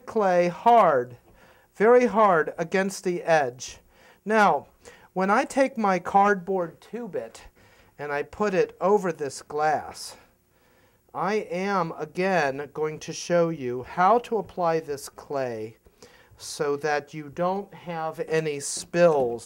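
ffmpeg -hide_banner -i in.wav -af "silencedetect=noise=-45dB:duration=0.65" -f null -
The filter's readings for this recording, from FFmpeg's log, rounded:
silence_start: 10.22
silence_end: 11.09 | silence_duration: 0.87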